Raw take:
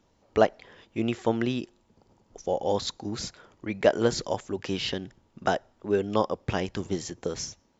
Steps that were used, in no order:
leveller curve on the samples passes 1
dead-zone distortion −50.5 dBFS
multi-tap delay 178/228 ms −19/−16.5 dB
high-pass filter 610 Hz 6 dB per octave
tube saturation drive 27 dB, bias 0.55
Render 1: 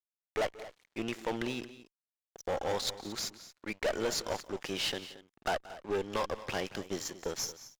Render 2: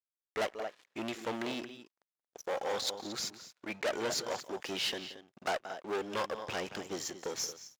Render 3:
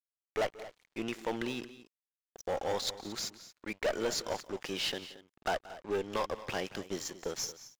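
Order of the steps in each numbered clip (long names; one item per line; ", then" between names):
high-pass filter, then leveller curve on the samples, then dead-zone distortion, then tube saturation, then multi-tap delay
dead-zone distortion, then multi-tap delay, then tube saturation, then leveller curve on the samples, then high-pass filter
high-pass filter, then tube saturation, then dead-zone distortion, then leveller curve on the samples, then multi-tap delay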